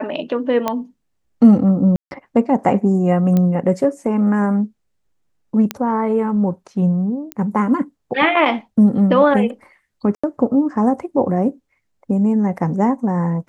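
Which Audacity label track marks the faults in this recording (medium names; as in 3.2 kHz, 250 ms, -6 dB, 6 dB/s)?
0.680000	0.680000	pop -6 dBFS
1.960000	2.110000	dropout 151 ms
3.370000	3.370000	pop -8 dBFS
5.710000	5.710000	pop -6 dBFS
7.320000	7.320000	pop -11 dBFS
10.150000	10.230000	dropout 85 ms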